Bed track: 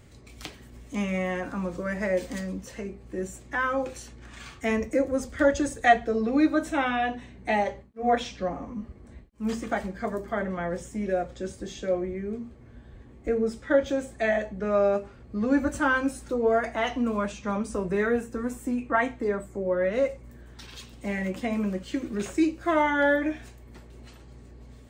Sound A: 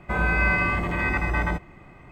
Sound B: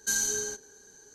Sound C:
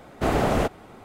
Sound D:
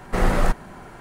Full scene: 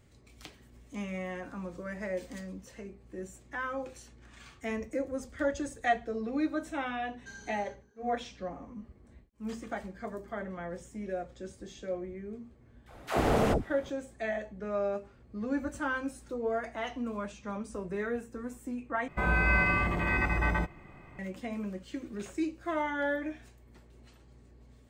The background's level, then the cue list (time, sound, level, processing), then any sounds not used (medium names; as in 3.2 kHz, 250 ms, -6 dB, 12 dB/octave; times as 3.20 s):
bed track -9 dB
7.19 s: add B -11.5 dB + low-pass 2.4 kHz
12.86 s: add C -4.5 dB + phase dispersion lows, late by 99 ms, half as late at 510 Hz
19.08 s: replace with A -4 dB
not used: D